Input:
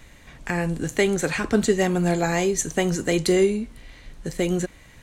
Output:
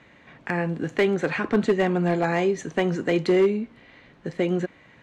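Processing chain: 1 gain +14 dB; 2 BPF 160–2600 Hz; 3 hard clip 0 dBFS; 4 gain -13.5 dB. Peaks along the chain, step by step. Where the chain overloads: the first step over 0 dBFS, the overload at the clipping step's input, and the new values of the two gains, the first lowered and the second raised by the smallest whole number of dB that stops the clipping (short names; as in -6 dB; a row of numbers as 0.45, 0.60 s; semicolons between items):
+6.5, +6.5, 0.0, -13.5 dBFS; step 1, 6.5 dB; step 1 +7 dB, step 4 -6.5 dB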